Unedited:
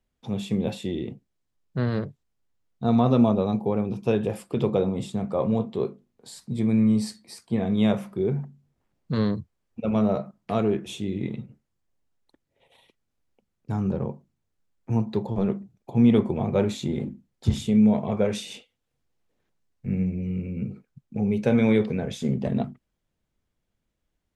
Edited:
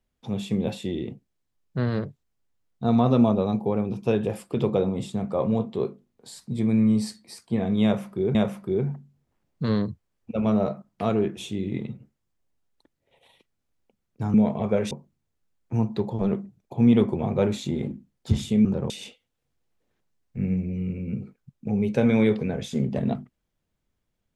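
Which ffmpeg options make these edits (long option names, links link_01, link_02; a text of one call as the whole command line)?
ffmpeg -i in.wav -filter_complex "[0:a]asplit=6[link_01][link_02][link_03][link_04][link_05][link_06];[link_01]atrim=end=8.352[link_07];[link_02]atrim=start=7.838:end=13.832[link_08];[link_03]atrim=start=17.818:end=18.392[link_09];[link_04]atrim=start=14.078:end=17.822[link_10];[link_05]atrim=start=13.828:end=14.082[link_11];[link_06]atrim=start=18.388[link_12];[link_07][link_08]acrossfade=duration=0.004:curve1=hsin:curve2=hsin[link_13];[link_13][link_09]acrossfade=duration=0.004:curve1=hsin:curve2=hsin[link_14];[link_14][link_10]acrossfade=duration=0.004:curve1=hsin:curve2=hsin[link_15];[link_15][link_11]acrossfade=duration=0.004:curve1=hsin:curve2=hsin[link_16];[link_16][link_12]acrossfade=duration=0.004:curve1=hsin:curve2=hsin" out.wav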